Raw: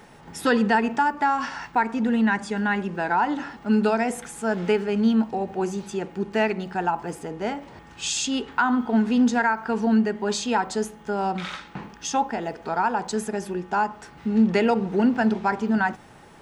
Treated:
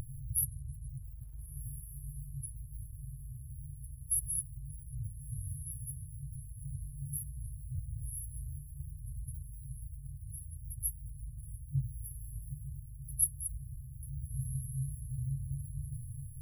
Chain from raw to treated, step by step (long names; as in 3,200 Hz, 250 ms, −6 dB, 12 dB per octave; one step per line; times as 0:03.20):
pitch vibrato 0.86 Hz 33 cents
brick-wall band-stop 150–10,000 Hz
feedback delay with all-pass diffusion 1,396 ms, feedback 41%, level −14.5 dB
level +14 dB